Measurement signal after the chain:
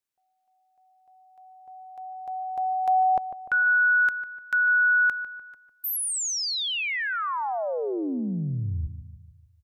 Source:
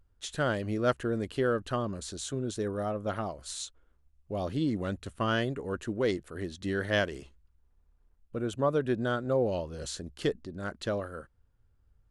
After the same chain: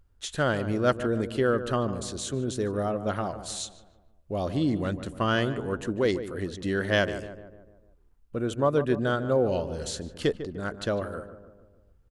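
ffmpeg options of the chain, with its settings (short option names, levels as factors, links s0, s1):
-filter_complex "[0:a]asplit=2[s0][s1];[s1]adelay=149,lowpass=f=1500:p=1,volume=0.282,asplit=2[s2][s3];[s3]adelay=149,lowpass=f=1500:p=1,volume=0.54,asplit=2[s4][s5];[s5]adelay=149,lowpass=f=1500:p=1,volume=0.54,asplit=2[s6][s7];[s7]adelay=149,lowpass=f=1500:p=1,volume=0.54,asplit=2[s8][s9];[s9]adelay=149,lowpass=f=1500:p=1,volume=0.54,asplit=2[s10][s11];[s11]adelay=149,lowpass=f=1500:p=1,volume=0.54[s12];[s0][s2][s4][s6][s8][s10][s12]amix=inputs=7:normalize=0,volume=1.5"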